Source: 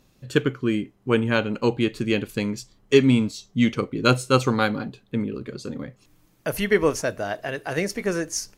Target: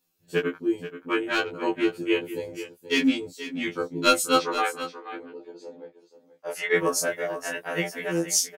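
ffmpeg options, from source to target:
-filter_complex "[0:a]aemphasis=mode=production:type=bsi,afwtdn=0.0316,asettb=1/sr,asplit=3[a][b][c];[a]atrim=end=4.364[d];[b]atrim=start=4.36:end=6.75,asetpts=PTS-STARTPTS,afade=t=in:d=0.004:c=qsin,afade=t=out:st=2.386:d=0.004:c=qsin,acrossover=split=330 6300:gain=0.0708 1 0.112[e][f][g];[e][f][g]amix=inputs=3:normalize=0[h];[c]atrim=start=6.746[i];[d][h]acrossfade=d=0.004:c1=hsin:c2=qsin[j];[j][i]acrossfade=d=0.004:c1=qsin:c2=hsin,asoftclip=type=hard:threshold=-8.5dB,asplit=2[k][l];[l]adelay=18,volume=-3dB[m];[k][m]amix=inputs=2:normalize=0,aecho=1:1:481:0.237,afftfilt=real='re*2*eq(mod(b,4),0)':imag='im*2*eq(mod(b,4),0)':win_size=2048:overlap=0.75"

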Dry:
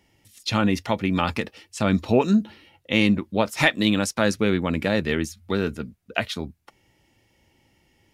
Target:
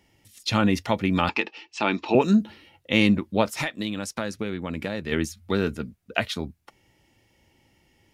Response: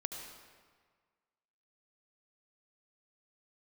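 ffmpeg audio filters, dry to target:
-filter_complex "[0:a]asettb=1/sr,asplit=3[a][b][c];[a]atrim=end=1.294[d];[b]atrim=start=1.29:end=2.15,asetpts=PTS-STARTPTS,afade=t=in:d=0.004:c=qsin,afade=t=out:st=0.856:d=0.004:c=qsin,highpass=340,equalizer=f=340:t=q:w=4:g=7,equalizer=f=550:t=q:w=4:g=-7,equalizer=f=880:t=q:w=4:g=9,equalizer=f=2.6k:t=q:w=4:g=9,lowpass=f=5.8k:w=0.5412,lowpass=f=5.8k:w=1.3066[e];[c]atrim=start=2.146[f];[d][e]acrossfade=d=0.004:c1=hsin:c2=qsin[g];[g][f]acrossfade=d=0.004:c1=qsin:c2=hsin,asplit=3[h][i][j];[h]afade=t=out:st=3.57:d=0.02[k];[i]acompressor=threshold=-26dB:ratio=6,afade=t=in:st=3.57:d=0.02,afade=t=out:st=5.11:d=0.02[l];[j]afade=t=in:st=5.11:d=0.02[m];[k][l][m]amix=inputs=3:normalize=0"

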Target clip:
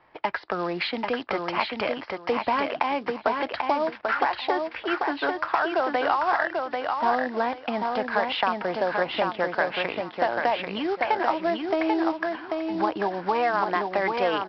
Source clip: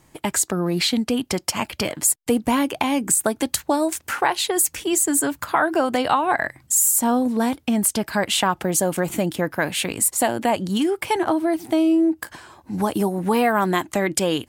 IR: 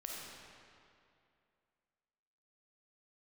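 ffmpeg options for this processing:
-filter_complex "[0:a]apsyclip=9dB,acrossover=split=490 2400:gain=0.112 1 0.0794[a][b][c];[a][b][c]amix=inputs=3:normalize=0,aresample=11025,acrusher=bits=5:mode=log:mix=0:aa=0.000001,aresample=44100,acompressor=threshold=-15dB:ratio=6,aecho=1:1:790|1580|2370:0.631|0.139|0.0305,volume=-5dB"

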